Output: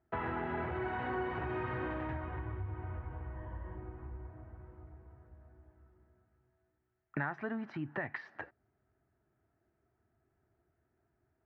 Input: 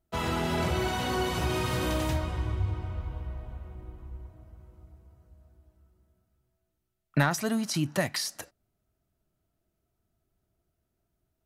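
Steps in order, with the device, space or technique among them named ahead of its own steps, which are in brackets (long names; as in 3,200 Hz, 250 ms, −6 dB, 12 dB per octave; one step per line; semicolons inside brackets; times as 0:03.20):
bass amplifier (downward compressor 4 to 1, threshold −39 dBFS, peak gain reduction 16.5 dB; loudspeaker in its box 77–2,100 Hz, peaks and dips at 180 Hz −8 dB, 380 Hz +3 dB, 570 Hz −4 dB, 830 Hz +4 dB, 1,700 Hz +7 dB)
0:03.36–0:03.78: EQ curve with evenly spaced ripples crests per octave 1.2, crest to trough 12 dB
level +3 dB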